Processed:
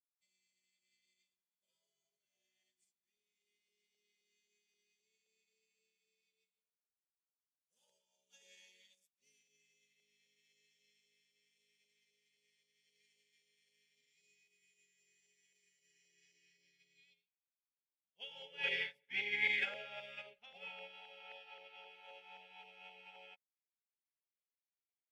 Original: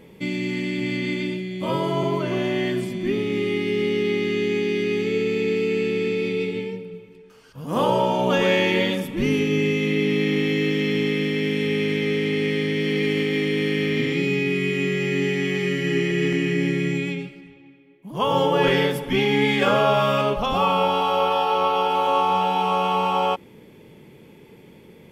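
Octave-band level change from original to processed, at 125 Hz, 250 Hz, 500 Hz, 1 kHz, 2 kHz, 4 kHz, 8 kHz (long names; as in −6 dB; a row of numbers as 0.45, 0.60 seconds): below −40 dB, below −40 dB, −38.5 dB, −38.5 dB, −18.0 dB, −22.0 dB, −28.5 dB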